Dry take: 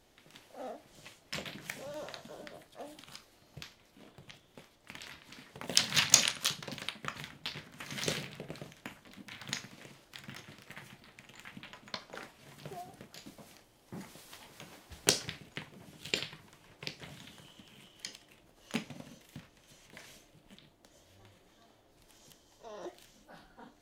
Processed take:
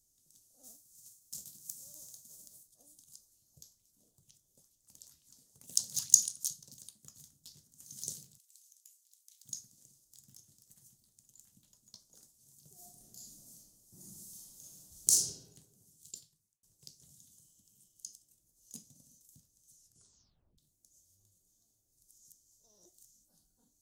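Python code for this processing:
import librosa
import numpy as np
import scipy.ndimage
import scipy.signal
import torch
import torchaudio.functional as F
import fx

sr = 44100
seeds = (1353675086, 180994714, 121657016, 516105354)

y = fx.envelope_flatten(x, sr, power=0.6, at=(0.63, 2.66), fade=0.02)
y = fx.bell_lfo(y, sr, hz=2.2, low_hz=480.0, high_hz=2800.0, db=10, at=(3.17, 6.14))
y = fx.steep_highpass(y, sr, hz=2000.0, slope=36, at=(8.37, 9.44), fade=0.02)
y = fx.reverb_throw(y, sr, start_s=12.73, length_s=2.43, rt60_s=1.2, drr_db=-7.0)
y = fx.edit(y, sr, fx.fade_out_span(start_s=15.75, length_s=0.88),
    fx.tape_stop(start_s=19.75, length_s=0.83), tone=tone)
y = fx.curve_eq(y, sr, hz=(110.0, 2300.0, 6500.0), db=(0, -27, 15))
y = y * 10.0 ** (-12.5 / 20.0)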